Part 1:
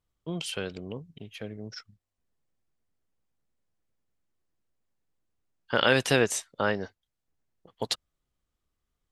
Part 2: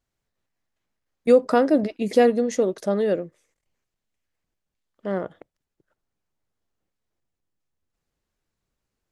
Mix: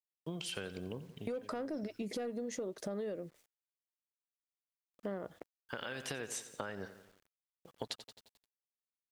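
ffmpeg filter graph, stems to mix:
-filter_complex "[0:a]equalizer=f=1.6k:t=o:w=0.24:g=4,acompressor=threshold=-26dB:ratio=10,volume=-3dB,asplit=2[a][b];[b]volume=-16dB[c];[1:a]equalizer=f=66:t=o:w=0.28:g=9,acontrast=83,alimiter=limit=-12.5dB:level=0:latency=1:release=138,volume=-10.5dB,asplit=2[d][e];[e]apad=whole_len=402024[f];[a][f]sidechaincompress=threshold=-41dB:ratio=3:attack=43:release=1290[g];[c]aecho=0:1:88|176|264|352|440|528|616:1|0.5|0.25|0.125|0.0625|0.0312|0.0156[h];[g][d][h]amix=inputs=3:normalize=0,acrusher=bits=10:mix=0:aa=0.000001,acompressor=threshold=-37dB:ratio=6"

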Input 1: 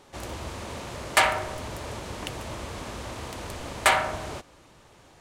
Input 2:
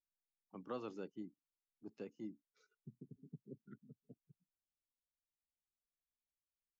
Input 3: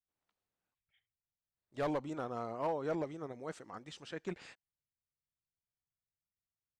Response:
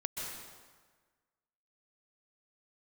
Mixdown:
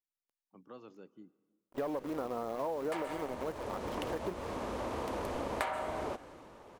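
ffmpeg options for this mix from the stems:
-filter_complex "[0:a]dynaudnorm=f=200:g=11:m=13.5dB,adelay=1750,volume=-6.5dB,asplit=2[a][b];[b]volume=-23dB[c];[1:a]volume=-7dB,asplit=2[d][e];[e]volume=-21dB[f];[2:a]acrusher=bits=8:dc=4:mix=0:aa=0.000001,volume=1.5dB,asplit=3[g][h][i];[h]volume=-20.5dB[j];[i]apad=whole_len=306742[k];[a][k]sidechaincompress=threshold=-45dB:ratio=8:attack=40:release=1090[l];[l][g]amix=inputs=2:normalize=0,equalizer=f=125:t=o:w=1:g=-4,equalizer=f=250:t=o:w=1:g=7,equalizer=f=500:t=o:w=1:g=8,equalizer=f=1k:t=o:w=1:g=6,equalizer=f=4k:t=o:w=1:g=-3,equalizer=f=8k:t=o:w=1:g=-6,acompressor=threshold=-29dB:ratio=6,volume=0dB[m];[3:a]atrim=start_sample=2205[n];[c][f][j]amix=inputs=3:normalize=0[o];[o][n]afir=irnorm=-1:irlink=0[p];[d][m][p]amix=inputs=3:normalize=0,acompressor=threshold=-39dB:ratio=1.5"

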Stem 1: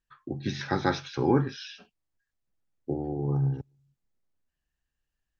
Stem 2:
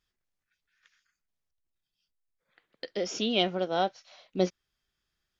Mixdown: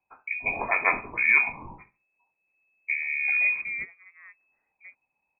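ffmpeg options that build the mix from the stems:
-filter_complex "[0:a]highshelf=f=1.7k:t=q:w=1.5:g=12.5,volume=2.5dB,asplit=3[a][b][c];[b]volume=-17dB[d];[1:a]adelay=450,volume=-3dB[e];[c]apad=whole_len=257855[f];[e][f]sidechaingate=range=-20dB:threshold=-57dB:ratio=16:detection=peak[g];[d]aecho=0:1:68|136|204|272:1|0.23|0.0529|0.0122[h];[a][g][h]amix=inputs=3:normalize=0,lowpass=f=2.2k:t=q:w=0.5098,lowpass=f=2.2k:t=q:w=0.6013,lowpass=f=2.2k:t=q:w=0.9,lowpass=f=2.2k:t=q:w=2.563,afreqshift=-2600"

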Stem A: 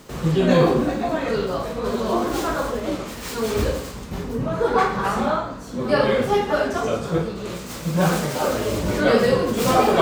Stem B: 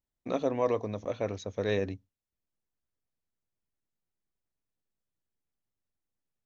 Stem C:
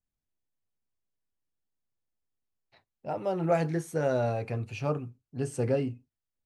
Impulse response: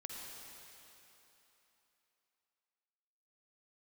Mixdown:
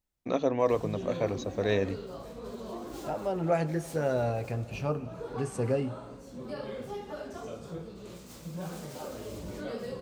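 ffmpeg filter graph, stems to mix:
-filter_complex "[0:a]equalizer=f=1.6k:t=o:w=1.8:g=-5.5,acompressor=threshold=-24dB:ratio=2,adelay=600,volume=-14dB[a];[1:a]volume=2dB[b];[2:a]volume=-2.5dB,asplit=3[c][d][e];[d]volume=-10dB[f];[e]apad=whole_len=468267[g];[a][g]sidechaincompress=threshold=-34dB:ratio=8:attack=27:release=390[h];[3:a]atrim=start_sample=2205[i];[f][i]afir=irnorm=-1:irlink=0[j];[h][b][c][j]amix=inputs=4:normalize=0"

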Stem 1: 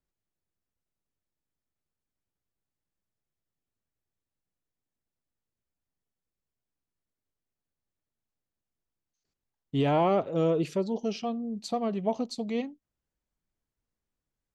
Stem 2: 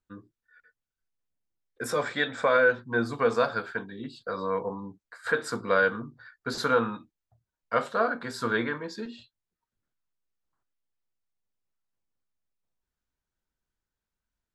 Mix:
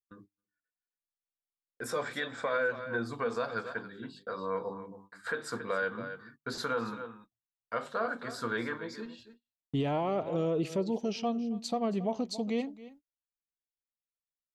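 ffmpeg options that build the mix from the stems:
-filter_complex "[0:a]volume=0.5dB,asplit=2[a][b];[b]volume=-19dB[c];[1:a]bandreject=f=50:t=h:w=6,bandreject=f=100:t=h:w=6,bandreject=f=150:t=h:w=6,bandreject=f=200:t=h:w=6,bandreject=f=250:t=h:w=6,bandreject=f=300:t=h:w=6,volume=-5dB,asplit=2[d][e];[e]volume=-14dB[f];[c][f]amix=inputs=2:normalize=0,aecho=0:1:274:1[g];[a][d][g]amix=inputs=3:normalize=0,agate=range=-28dB:threshold=-55dB:ratio=16:detection=peak,alimiter=limit=-22dB:level=0:latency=1:release=117"

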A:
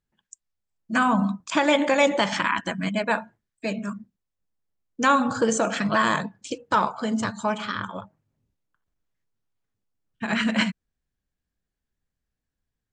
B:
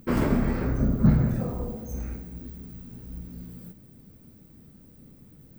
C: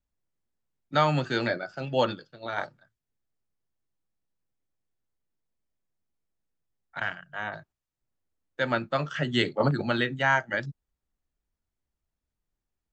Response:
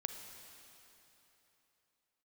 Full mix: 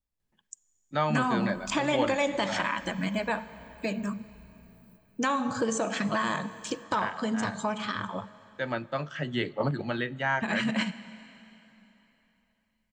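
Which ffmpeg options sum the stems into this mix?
-filter_complex "[0:a]adelay=200,volume=-1dB,asplit=2[a][b];[b]volume=-11.5dB[c];[1:a]acompressor=threshold=-29dB:ratio=6,adelay=1250,volume=-14.5dB[d];[2:a]acrossover=split=3300[e][f];[f]acompressor=threshold=-44dB:ratio=4:attack=1:release=60[g];[e][g]amix=inputs=2:normalize=0,volume=-5.5dB,asplit=2[h][i];[i]volume=-13.5dB[j];[a][d]amix=inputs=2:normalize=0,acompressor=threshold=-30dB:ratio=6,volume=0dB[k];[3:a]atrim=start_sample=2205[l];[c][j]amix=inputs=2:normalize=0[m];[m][l]afir=irnorm=-1:irlink=0[n];[h][k][n]amix=inputs=3:normalize=0,bandreject=f=1.4k:w=13"

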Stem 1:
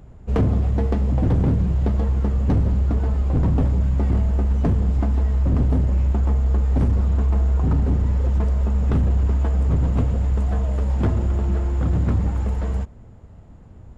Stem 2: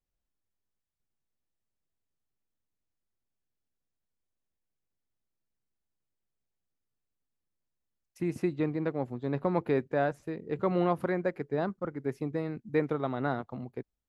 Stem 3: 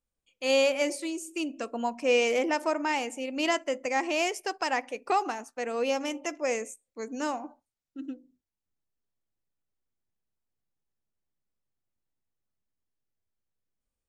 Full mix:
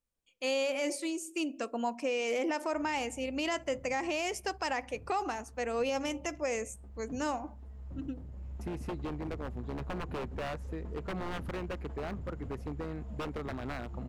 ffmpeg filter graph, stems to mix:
-filter_complex "[0:a]adelay=2450,volume=-19.5dB[a];[1:a]adelay=450,volume=0dB[b];[2:a]volume=-1.5dB,asplit=2[c][d];[d]apad=whole_len=724544[e];[a][e]sidechaincompress=threshold=-44dB:ratio=4:attack=6.5:release=805[f];[f][b]amix=inputs=2:normalize=0,aeval=exprs='0.0531*(abs(mod(val(0)/0.0531+3,4)-2)-1)':c=same,acompressor=threshold=-37dB:ratio=2.5,volume=0dB[g];[c][g]amix=inputs=2:normalize=0,alimiter=limit=-23.5dB:level=0:latency=1:release=45"

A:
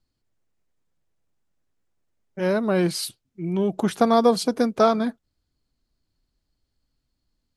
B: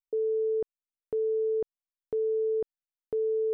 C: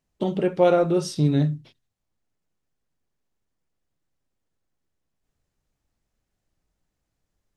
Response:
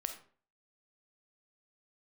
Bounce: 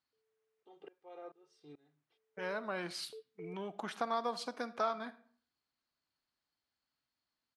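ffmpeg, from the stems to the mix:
-filter_complex "[0:a]equalizer=f=460:t=o:w=1.6:g=-7,volume=-3dB,asplit=3[a][b][c];[b]volume=-4.5dB[d];[1:a]volume=-10dB[e];[2:a]aecho=1:1:2.5:0.88,aeval=exprs='val(0)*pow(10,-26*if(lt(mod(-2.3*n/s,1),2*abs(-2.3)/1000),1-mod(-2.3*n/s,1)/(2*abs(-2.3)/1000),(mod(-2.3*n/s,1)-2*abs(-2.3)/1000)/(1-2*abs(-2.3)/1000))/20)':c=same,adelay=450,volume=-18.5dB[f];[c]apad=whole_len=156026[g];[e][g]sidechaingate=range=-39dB:threshold=-48dB:ratio=16:detection=peak[h];[3:a]atrim=start_sample=2205[i];[d][i]afir=irnorm=-1:irlink=0[j];[a][h][f][j]amix=inputs=4:normalize=0,highpass=790,aemphasis=mode=reproduction:type=riaa,acompressor=threshold=-48dB:ratio=1.5"

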